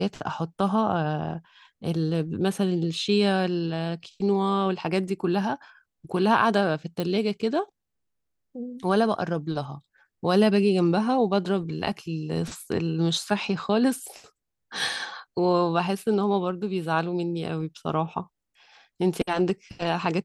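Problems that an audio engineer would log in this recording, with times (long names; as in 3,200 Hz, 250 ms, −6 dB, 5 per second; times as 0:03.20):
0:07.00: click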